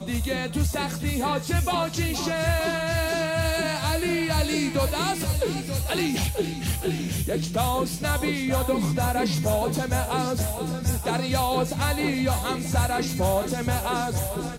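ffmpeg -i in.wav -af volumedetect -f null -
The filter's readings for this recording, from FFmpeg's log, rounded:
mean_volume: -25.0 dB
max_volume: -14.1 dB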